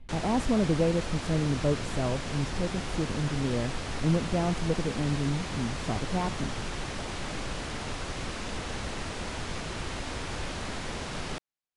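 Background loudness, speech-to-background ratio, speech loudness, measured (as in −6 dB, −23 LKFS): −35.5 LKFS, 5.0 dB, −30.5 LKFS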